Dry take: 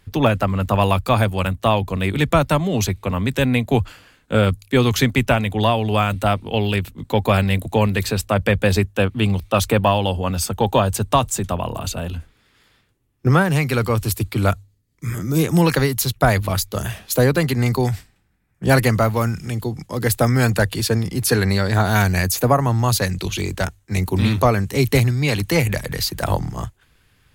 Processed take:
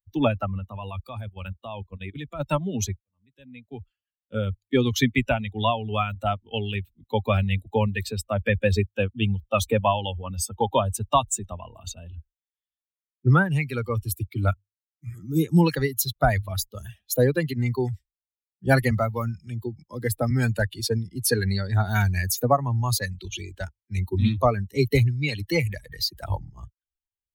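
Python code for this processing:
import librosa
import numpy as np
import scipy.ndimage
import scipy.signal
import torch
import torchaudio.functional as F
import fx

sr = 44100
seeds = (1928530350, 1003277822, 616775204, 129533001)

y = fx.level_steps(x, sr, step_db=11, at=(0.58, 2.39), fade=0.02)
y = fx.band_squash(y, sr, depth_pct=40, at=(18.91, 20.31))
y = fx.edit(y, sr, fx.fade_in_span(start_s=3.0, length_s=1.95), tone=tone)
y = fx.bin_expand(y, sr, power=2.0)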